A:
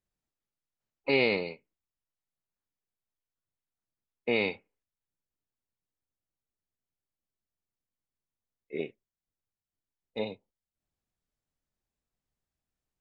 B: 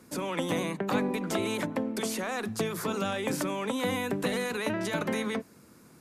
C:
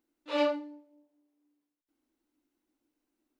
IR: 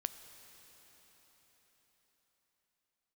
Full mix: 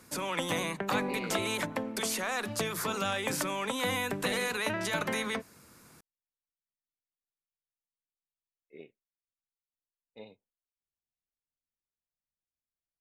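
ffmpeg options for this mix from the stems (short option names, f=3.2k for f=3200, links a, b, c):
-filter_complex "[0:a]volume=-15dB,asplit=2[a][b];[1:a]equalizer=f=270:w=0.53:g=-9,volume=3dB[c];[2:a]adelay=2100,volume=-9dB[d];[b]apad=whole_len=242477[e];[d][e]sidechaincompress=threshold=-58dB:ratio=8:attack=16:release=1380[f];[a][c][f]amix=inputs=3:normalize=0"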